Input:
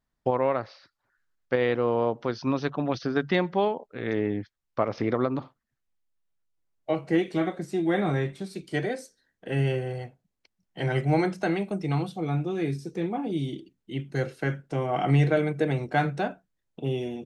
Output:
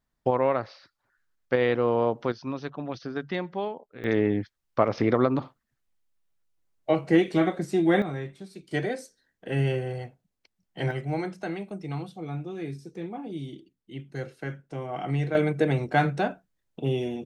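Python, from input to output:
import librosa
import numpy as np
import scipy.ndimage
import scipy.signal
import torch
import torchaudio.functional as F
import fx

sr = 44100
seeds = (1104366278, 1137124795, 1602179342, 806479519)

y = fx.gain(x, sr, db=fx.steps((0.0, 1.0), (2.32, -6.5), (4.04, 3.5), (8.02, -7.0), (8.71, 0.0), (10.91, -6.5), (15.35, 2.0)))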